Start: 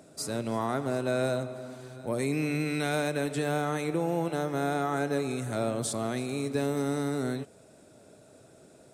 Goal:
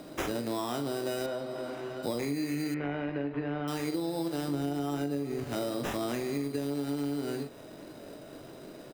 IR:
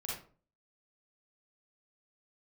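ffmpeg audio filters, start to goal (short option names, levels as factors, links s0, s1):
-filter_complex "[0:a]highpass=110,equalizer=f=310:t=o:w=0.23:g=8.5,acrusher=samples=10:mix=1:aa=0.000001,asettb=1/sr,asplit=3[s0][s1][s2];[s0]atrim=end=4.484[s3];[s1]atrim=start=4.48:end=5.44,asetpts=PTS-STARTPTS,afade=t=in:d=0.004:c=qsin,afade=t=out:st=0.956:d=0.004:c=qsin,lowshelf=f=490:g=9[s4];[s2]atrim=start=5.436[s5];[s3][s4]acrossfade=d=0.004:c1=hsin:c2=qsin[s6];[s6][s5]acrossfade=d=0.004:c1=qsin:c2=hsin,aecho=1:1:21|42:0.299|0.398,acompressor=threshold=0.0158:ratio=10,asettb=1/sr,asplit=3[s7][s8][s9];[s7]atrim=end=1.264[s10];[s8]atrim=start=1.26:end=2.03,asetpts=PTS-STARTPTS,afade=t=in:d=0.004:c=qsin,afade=t=out:st=0.766:d=0.004:c=qsin,asplit=2[s11][s12];[s12]highpass=f=720:p=1,volume=2.51,asoftclip=type=tanh:threshold=0.0282[s13];[s11][s13]amix=inputs=2:normalize=0,lowpass=f=1500:p=1,volume=0.501[s14];[s9]atrim=start=2.026[s15];[s10][s14]acrossfade=d=0.004:c1=hsin:c2=qsin[s16];[s16][s15]acrossfade=d=0.004:c1=qsin:c2=hsin,asettb=1/sr,asplit=3[s17][s18][s19];[s17]atrim=end=2.744[s20];[s18]atrim=start=2.74:end=3.68,asetpts=PTS-STARTPTS,afade=t=in:d=0.004:c=qsin,afade=t=out:st=0.936:d=0.004:c=qsin,lowpass=f=2500:w=0.5412,lowpass=f=2500:w=1.3066[s21];[s19]atrim=start=3.676[s22];[s20][s21]acrossfade=d=0.004:c1=hsin:c2=qsin[s23];[s23][s22]acrossfade=d=0.004:c1=qsin:c2=hsin,volume=2.11"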